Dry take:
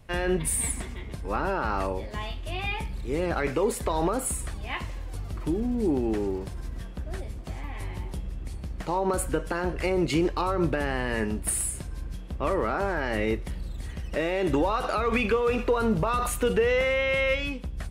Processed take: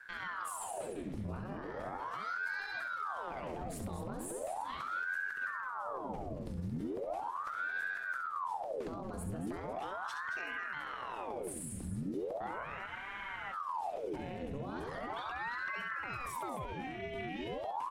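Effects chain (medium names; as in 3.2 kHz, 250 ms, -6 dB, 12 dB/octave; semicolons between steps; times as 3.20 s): bass shelf 380 Hz +8.5 dB; peak limiter -26 dBFS, peak gain reduction 17 dB; loudspeakers at several distances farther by 23 m -8 dB, 77 m -10 dB; spectral freeze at 12.89 s, 0.63 s; ring modulator with a swept carrier 860 Hz, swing 85%, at 0.38 Hz; trim -6.5 dB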